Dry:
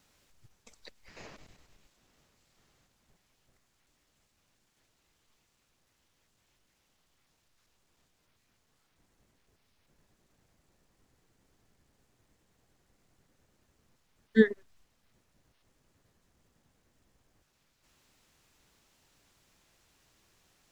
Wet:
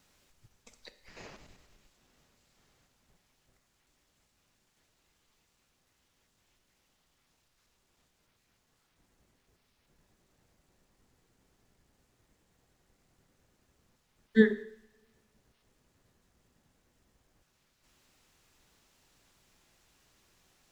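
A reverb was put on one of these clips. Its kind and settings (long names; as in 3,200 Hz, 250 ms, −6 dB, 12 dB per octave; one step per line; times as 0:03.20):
coupled-rooms reverb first 0.73 s, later 2.3 s, from −27 dB, DRR 10 dB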